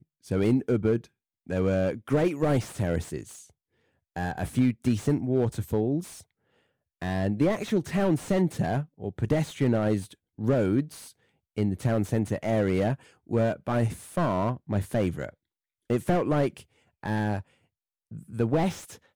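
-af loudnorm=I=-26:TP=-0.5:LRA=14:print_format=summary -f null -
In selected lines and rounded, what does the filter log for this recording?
Input Integrated:    -27.7 LUFS
Input True Peak:     -11.0 dBTP
Input LRA:             3.6 LU
Input Threshold:     -38.5 LUFS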